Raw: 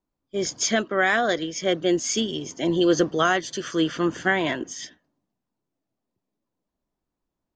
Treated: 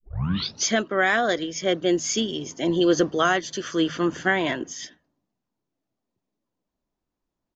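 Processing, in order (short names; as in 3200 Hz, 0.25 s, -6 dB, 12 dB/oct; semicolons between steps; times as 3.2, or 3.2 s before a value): tape start at the beginning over 0.66 s; de-hum 79.01 Hz, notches 2; downsampling 16000 Hz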